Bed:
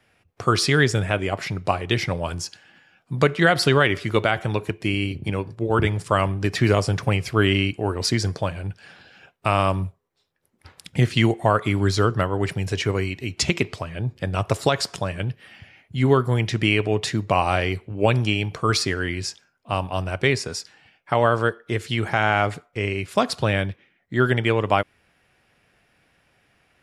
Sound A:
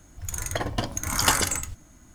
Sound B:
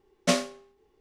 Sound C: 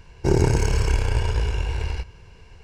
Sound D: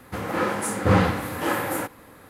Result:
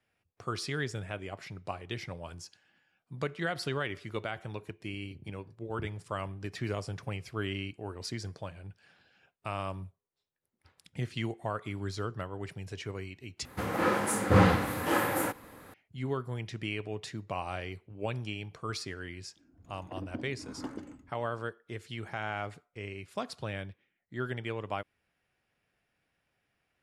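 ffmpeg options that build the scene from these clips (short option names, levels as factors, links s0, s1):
-filter_complex "[0:a]volume=0.158[s0];[1:a]bandpass=f=280:t=q:w=3.2:csg=0[s1];[s0]asplit=2[s2][s3];[s2]atrim=end=13.454[s4];[4:a]atrim=end=2.29,asetpts=PTS-STARTPTS,volume=0.708[s5];[s3]atrim=start=15.736[s6];[s1]atrim=end=2.14,asetpts=PTS-STARTPTS,volume=0.708,afade=t=in:d=0.004:c=hsin,afade=t=out:st=2.136:d=0.004:c=hsin,adelay=19360[s7];[s4][s5]acrossfade=d=0.004:c1=hsin:c2=hsin[s8];[s8][s6]acrossfade=d=0.004:c1=hsin:c2=hsin[s9];[s9][s7]amix=inputs=2:normalize=0"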